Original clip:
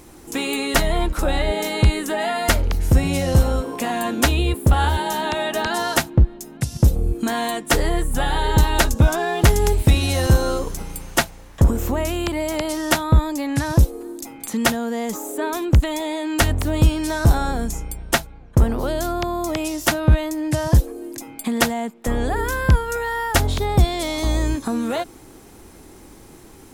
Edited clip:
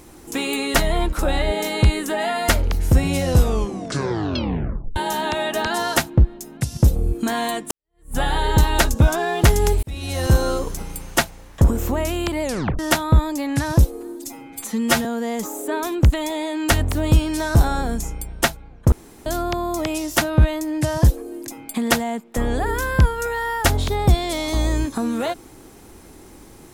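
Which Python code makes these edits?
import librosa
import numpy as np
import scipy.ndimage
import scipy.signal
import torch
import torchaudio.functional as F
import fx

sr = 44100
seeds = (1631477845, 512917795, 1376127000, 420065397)

y = fx.edit(x, sr, fx.tape_stop(start_s=3.28, length_s=1.68),
    fx.fade_in_span(start_s=7.71, length_s=0.45, curve='exp'),
    fx.fade_in_span(start_s=9.83, length_s=0.53),
    fx.tape_stop(start_s=12.43, length_s=0.36),
    fx.stretch_span(start_s=14.15, length_s=0.6, factor=1.5),
    fx.room_tone_fill(start_s=18.62, length_s=0.34), tone=tone)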